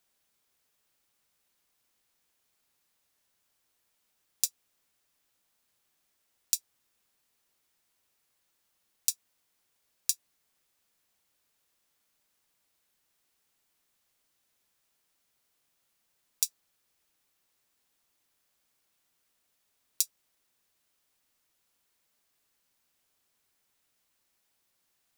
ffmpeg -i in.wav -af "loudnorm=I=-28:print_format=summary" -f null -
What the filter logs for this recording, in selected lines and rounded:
Input Integrated:    -32.3 LUFS
Input True Peak:      +0.0 dBTP
Input LRA:             3.0 LU
Input Threshold:     -42.5 LUFS